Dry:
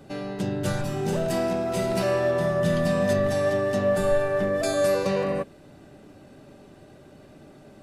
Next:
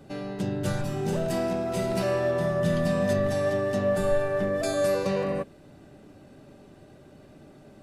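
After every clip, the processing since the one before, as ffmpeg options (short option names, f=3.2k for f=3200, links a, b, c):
-af "lowshelf=f=330:g=2.5,volume=-3dB"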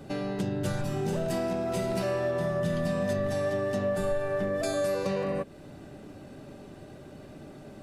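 -af "acompressor=threshold=-34dB:ratio=2.5,volume=4.5dB"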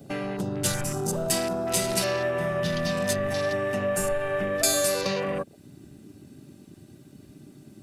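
-af "crystalizer=i=8:c=0,afwtdn=0.0178"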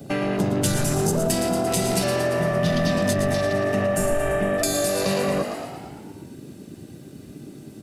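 -filter_complex "[0:a]asplit=2[a][b];[b]asplit=8[c][d][e][f][g][h][i][j];[c]adelay=114,afreqshift=46,volume=-9dB[k];[d]adelay=228,afreqshift=92,volume=-13.3dB[l];[e]adelay=342,afreqshift=138,volume=-17.6dB[m];[f]adelay=456,afreqshift=184,volume=-21.9dB[n];[g]adelay=570,afreqshift=230,volume=-26.2dB[o];[h]adelay=684,afreqshift=276,volume=-30.5dB[p];[i]adelay=798,afreqshift=322,volume=-34.8dB[q];[j]adelay=912,afreqshift=368,volume=-39.1dB[r];[k][l][m][n][o][p][q][r]amix=inputs=8:normalize=0[s];[a][s]amix=inputs=2:normalize=0,acrossover=split=420[t][u];[u]acompressor=threshold=-31dB:ratio=4[v];[t][v]amix=inputs=2:normalize=0,volume=7dB"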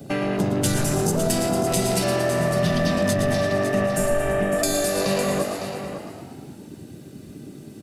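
-af "aecho=1:1:556:0.335"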